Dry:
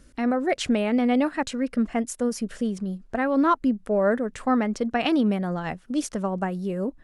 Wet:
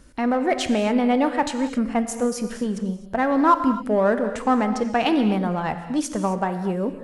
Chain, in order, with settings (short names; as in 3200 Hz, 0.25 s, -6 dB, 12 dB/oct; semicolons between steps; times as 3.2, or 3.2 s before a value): bell 920 Hz +6.5 dB 0.6 oct; in parallel at -10 dB: hard clip -25 dBFS, distortion -6 dB; on the sum: non-linear reverb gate 0.29 s flat, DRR 8 dB